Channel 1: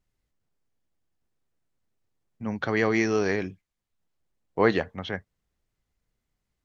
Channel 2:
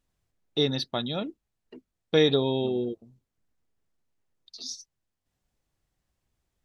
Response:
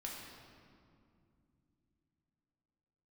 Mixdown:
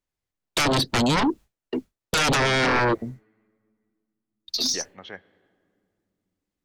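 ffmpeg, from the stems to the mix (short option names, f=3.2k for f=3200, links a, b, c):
-filter_complex "[0:a]highpass=f=380:p=1,volume=-6dB,asplit=3[a][b][c];[a]atrim=end=2.8,asetpts=PTS-STARTPTS,afade=t=out:st=2.796:d=0.004:c=hsin[d];[b]atrim=start=2.8:end=4.74,asetpts=PTS-STARTPTS,volume=0[e];[c]atrim=start=4.74,asetpts=PTS-STARTPTS,afade=t=in:d=0.004:c=hsin[f];[d][e][f]concat=n=3:v=0:a=1,asplit=2[g][h];[h]volume=-16.5dB[i];[1:a]agate=range=-33dB:threshold=-49dB:ratio=3:detection=peak,acrossover=split=200|750[j][k][l];[j]acompressor=threshold=-39dB:ratio=4[m];[k]acompressor=threshold=-25dB:ratio=4[n];[l]acompressor=threshold=-42dB:ratio=4[o];[m][n][o]amix=inputs=3:normalize=0,aeval=exprs='0.168*sin(PI/2*8.91*val(0)/0.168)':c=same,volume=-2dB[p];[2:a]atrim=start_sample=2205[q];[i][q]afir=irnorm=-1:irlink=0[r];[g][p][r]amix=inputs=3:normalize=0"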